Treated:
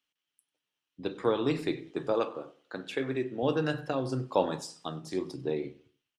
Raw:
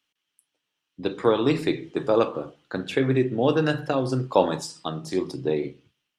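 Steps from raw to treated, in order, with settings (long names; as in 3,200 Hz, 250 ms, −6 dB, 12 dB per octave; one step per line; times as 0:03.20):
0:02.13–0:03.43: high-pass filter 310 Hz 6 dB per octave
repeating echo 96 ms, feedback 42%, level −23 dB
level −7 dB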